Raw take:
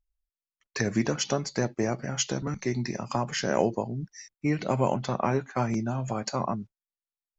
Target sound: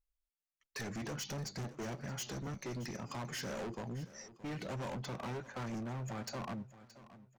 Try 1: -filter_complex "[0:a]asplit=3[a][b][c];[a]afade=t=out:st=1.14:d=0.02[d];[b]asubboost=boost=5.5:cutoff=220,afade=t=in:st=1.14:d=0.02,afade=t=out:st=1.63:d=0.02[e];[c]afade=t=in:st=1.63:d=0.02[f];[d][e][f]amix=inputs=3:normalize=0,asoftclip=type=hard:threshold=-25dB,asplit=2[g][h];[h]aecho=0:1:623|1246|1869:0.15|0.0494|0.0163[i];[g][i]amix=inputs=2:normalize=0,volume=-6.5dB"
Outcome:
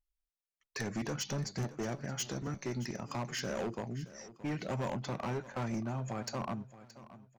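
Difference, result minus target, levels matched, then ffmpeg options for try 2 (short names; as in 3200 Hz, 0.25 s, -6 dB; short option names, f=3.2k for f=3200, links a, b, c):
hard clip: distortion -4 dB
-filter_complex "[0:a]asplit=3[a][b][c];[a]afade=t=out:st=1.14:d=0.02[d];[b]asubboost=boost=5.5:cutoff=220,afade=t=in:st=1.14:d=0.02,afade=t=out:st=1.63:d=0.02[e];[c]afade=t=in:st=1.63:d=0.02[f];[d][e][f]amix=inputs=3:normalize=0,asoftclip=type=hard:threshold=-32dB,asplit=2[g][h];[h]aecho=0:1:623|1246|1869:0.15|0.0494|0.0163[i];[g][i]amix=inputs=2:normalize=0,volume=-6.5dB"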